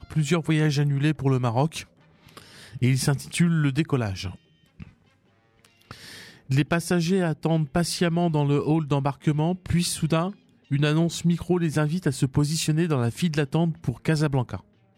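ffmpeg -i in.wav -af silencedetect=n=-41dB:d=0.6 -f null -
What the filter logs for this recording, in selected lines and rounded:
silence_start: 4.89
silence_end: 5.65 | silence_duration: 0.76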